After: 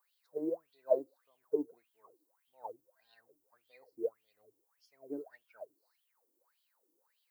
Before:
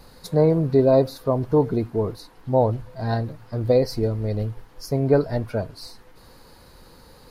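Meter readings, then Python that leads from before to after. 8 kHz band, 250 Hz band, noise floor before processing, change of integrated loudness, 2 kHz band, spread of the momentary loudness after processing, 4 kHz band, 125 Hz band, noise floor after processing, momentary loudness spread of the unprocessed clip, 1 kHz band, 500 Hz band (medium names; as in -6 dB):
no reading, -20.5 dB, -50 dBFS, -16.0 dB, -25.0 dB, 20 LU, under -30 dB, under -40 dB, -80 dBFS, 12 LU, -22.5 dB, -17.5 dB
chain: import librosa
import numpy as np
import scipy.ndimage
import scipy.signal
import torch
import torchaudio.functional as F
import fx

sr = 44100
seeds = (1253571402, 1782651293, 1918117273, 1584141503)

y = fx.wah_lfo(x, sr, hz=1.7, low_hz=300.0, high_hz=3300.0, q=13.0)
y = fx.dmg_noise_colour(y, sr, seeds[0], colour='violet', level_db=-76.0)
y = fx.bass_treble(y, sr, bass_db=-11, treble_db=9)
y = fx.upward_expand(y, sr, threshold_db=-50.0, expansion=1.5)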